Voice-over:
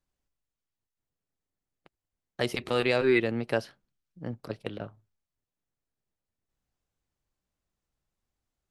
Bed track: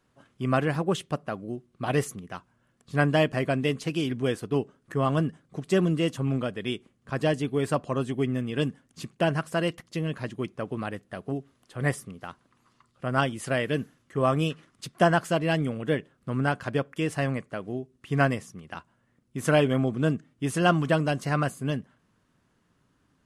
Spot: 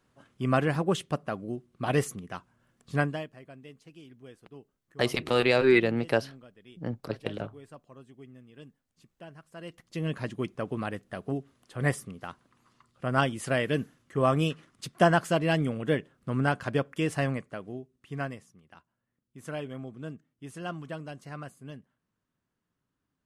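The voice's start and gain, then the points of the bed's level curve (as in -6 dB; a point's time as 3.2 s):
2.60 s, +2.5 dB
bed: 2.96 s -0.5 dB
3.34 s -22.5 dB
9.45 s -22.5 dB
10.07 s -0.5 dB
17.19 s -0.5 dB
18.59 s -15 dB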